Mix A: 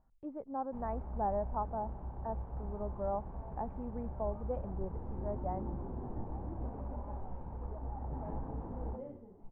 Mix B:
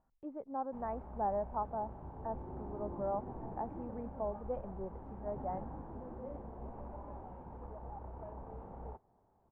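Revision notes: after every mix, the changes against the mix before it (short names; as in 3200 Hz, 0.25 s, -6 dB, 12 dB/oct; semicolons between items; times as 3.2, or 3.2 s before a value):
second sound: entry -2.75 s; master: add low shelf 130 Hz -10 dB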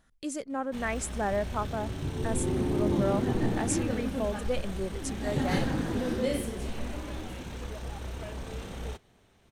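second sound +9.5 dB; master: remove ladder low-pass 1000 Hz, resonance 60%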